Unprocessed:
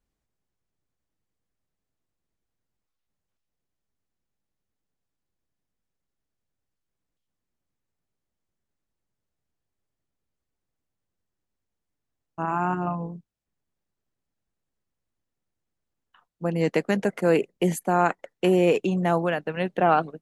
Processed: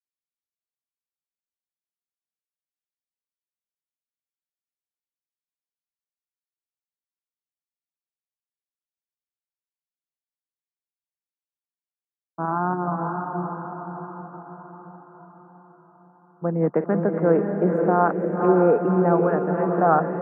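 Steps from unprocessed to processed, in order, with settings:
delay that plays each chunk backwards 240 ms, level −12 dB
downward expander −46 dBFS
elliptic band-pass filter 140–1,400 Hz, stop band 40 dB
feedback delay with all-pass diffusion 540 ms, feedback 54%, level −4 dB
level +2 dB

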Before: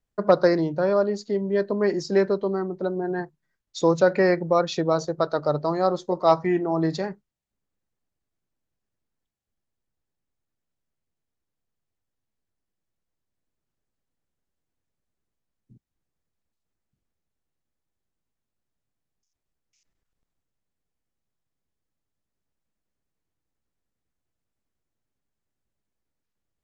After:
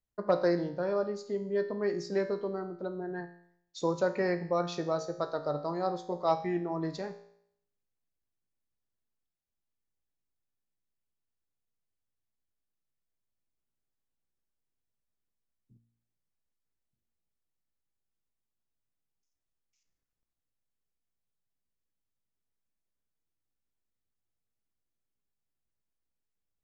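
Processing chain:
tuned comb filter 58 Hz, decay 0.69 s, harmonics all, mix 70%
level −2 dB

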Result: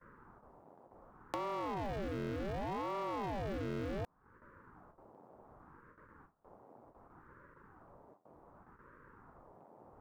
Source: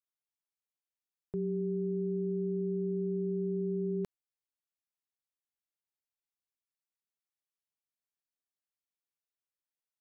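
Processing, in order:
leveller curve on the samples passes 5
Butterworth band-reject 840 Hz, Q 2.1
noise in a band 170–910 Hz −68 dBFS
noise gate with hold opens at −59 dBFS
downward compressor 4 to 1, threshold −50 dBFS, peak gain reduction 18 dB
ring modulator whose carrier an LFO sweeps 410 Hz, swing 90%, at 0.67 Hz
level +11.5 dB

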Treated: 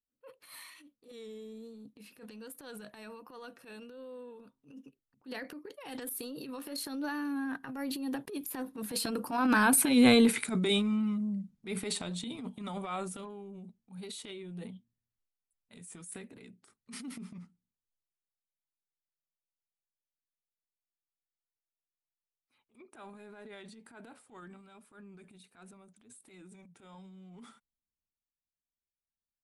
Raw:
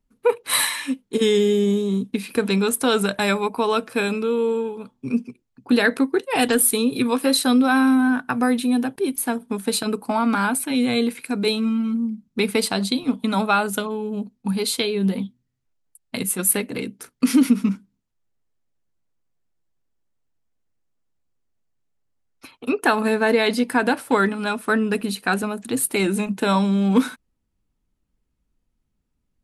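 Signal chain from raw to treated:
source passing by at 0:09.99, 27 m/s, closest 10 metres
pitch vibrato 1.3 Hz 49 cents
transient designer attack −11 dB, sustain +8 dB

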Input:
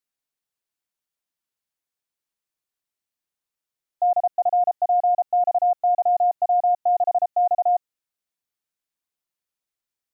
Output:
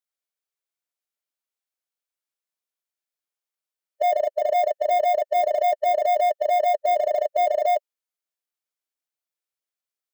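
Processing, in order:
high-pass filter 390 Hz 12 dB per octave
leveller curve on the samples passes 2
formants moved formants −3 semitones

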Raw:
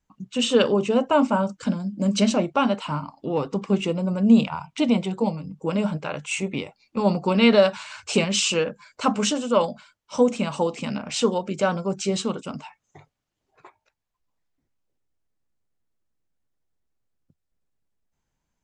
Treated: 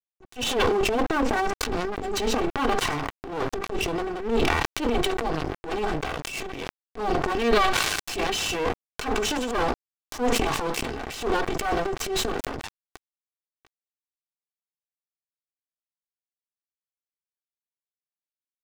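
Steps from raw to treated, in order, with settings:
lower of the sound and its delayed copy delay 2.6 ms
high-shelf EQ 7,700 Hz −12 dB
in parallel at +2 dB: brickwall limiter −17 dBFS, peak gain reduction 9 dB
on the sum: dead-zone distortion −32 dBFS
transient designer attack −9 dB, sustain +10 dB
level that may fall only so fast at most 25 dB per second
level −5.5 dB

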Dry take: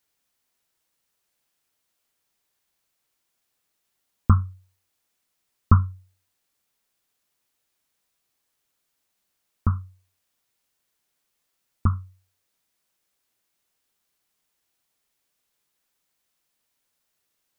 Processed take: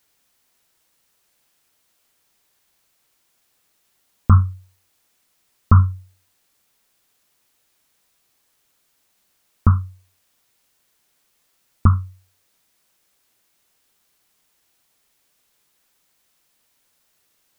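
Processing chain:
boost into a limiter +11 dB
level −1 dB

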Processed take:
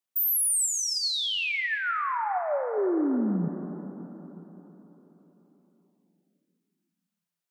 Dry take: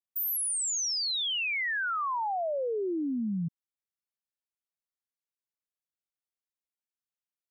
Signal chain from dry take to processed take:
0:00.66–0:02.78: flanger 1.2 Hz, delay 6 ms, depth 8.4 ms, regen +52%
high-pass filter 170 Hz
convolution reverb RT60 4.2 s, pre-delay 63 ms, DRR 8 dB
level +5.5 dB

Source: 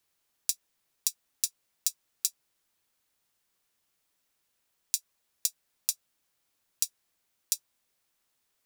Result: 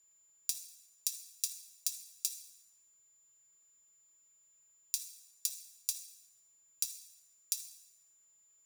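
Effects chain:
steady tone 7,100 Hz −60 dBFS
on a send: convolution reverb RT60 1.2 s, pre-delay 4 ms, DRR 5 dB
on the sum: level −6 dB

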